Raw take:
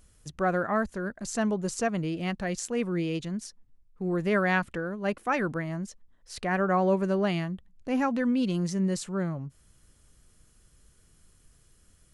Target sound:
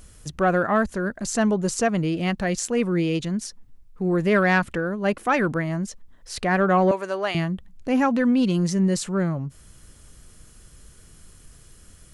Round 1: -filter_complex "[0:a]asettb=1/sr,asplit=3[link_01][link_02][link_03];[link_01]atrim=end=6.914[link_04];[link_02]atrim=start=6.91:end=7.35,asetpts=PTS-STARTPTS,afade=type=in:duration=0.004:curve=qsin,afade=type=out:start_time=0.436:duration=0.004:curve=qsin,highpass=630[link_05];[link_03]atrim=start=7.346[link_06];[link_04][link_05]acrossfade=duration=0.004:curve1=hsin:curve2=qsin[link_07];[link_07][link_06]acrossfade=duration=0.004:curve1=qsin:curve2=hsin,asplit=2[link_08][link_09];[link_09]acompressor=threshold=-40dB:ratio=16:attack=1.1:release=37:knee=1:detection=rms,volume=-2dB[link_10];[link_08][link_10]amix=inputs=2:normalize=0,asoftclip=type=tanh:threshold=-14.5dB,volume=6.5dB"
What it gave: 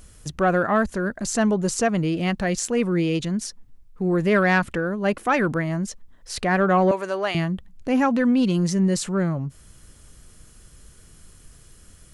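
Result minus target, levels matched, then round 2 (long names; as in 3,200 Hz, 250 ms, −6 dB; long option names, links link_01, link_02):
downward compressor: peak gain reduction −10 dB
-filter_complex "[0:a]asettb=1/sr,asplit=3[link_01][link_02][link_03];[link_01]atrim=end=6.914[link_04];[link_02]atrim=start=6.91:end=7.35,asetpts=PTS-STARTPTS,afade=type=in:duration=0.004:curve=qsin,afade=type=out:start_time=0.436:duration=0.004:curve=qsin,highpass=630[link_05];[link_03]atrim=start=7.346[link_06];[link_04][link_05]acrossfade=duration=0.004:curve1=hsin:curve2=qsin[link_07];[link_07][link_06]acrossfade=duration=0.004:curve1=qsin:curve2=hsin,asplit=2[link_08][link_09];[link_09]acompressor=threshold=-50.5dB:ratio=16:attack=1.1:release=37:knee=1:detection=rms,volume=-2dB[link_10];[link_08][link_10]amix=inputs=2:normalize=0,asoftclip=type=tanh:threshold=-14.5dB,volume=6.5dB"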